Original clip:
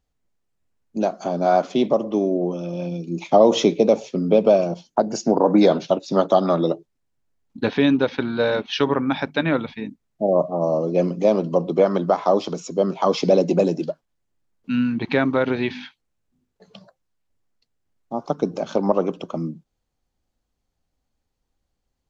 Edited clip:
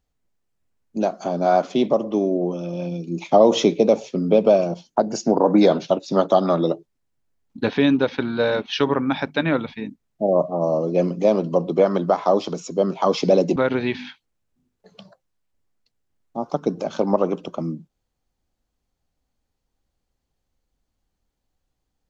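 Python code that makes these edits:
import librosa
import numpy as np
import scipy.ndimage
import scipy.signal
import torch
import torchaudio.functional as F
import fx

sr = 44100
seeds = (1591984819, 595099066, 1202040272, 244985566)

y = fx.edit(x, sr, fx.cut(start_s=13.56, length_s=1.76), tone=tone)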